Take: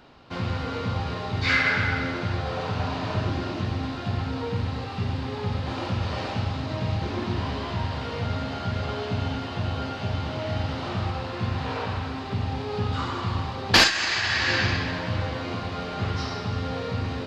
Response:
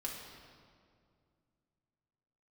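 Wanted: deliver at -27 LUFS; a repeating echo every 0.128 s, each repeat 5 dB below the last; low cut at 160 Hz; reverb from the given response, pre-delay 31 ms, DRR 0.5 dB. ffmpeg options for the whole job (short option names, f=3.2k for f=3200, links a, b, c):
-filter_complex "[0:a]highpass=160,aecho=1:1:128|256|384|512|640|768|896:0.562|0.315|0.176|0.0988|0.0553|0.031|0.0173,asplit=2[a][b];[1:a]atrim=start_sample=2205,adelay=31[c];[b][c]afir=irnorm=-1:irlink=0,volume=-1dB[d];[a][d]amix=inputs=2:normalize=0,volume=-3dB"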